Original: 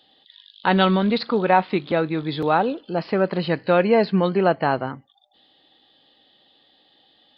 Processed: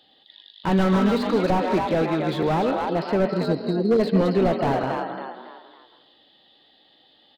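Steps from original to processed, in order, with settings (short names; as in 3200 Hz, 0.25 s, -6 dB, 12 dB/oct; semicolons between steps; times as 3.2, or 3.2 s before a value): spectral delete 3.3–4, 510–3800 Hz; frequency-shifting echo 0.276 s, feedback 39%, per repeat +55 Hz, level -8.5 dB; reverb RT60 0.50 s, pre-delay 0.1 s, DRR 10.5 dB; slew limiter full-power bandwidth 78 Hz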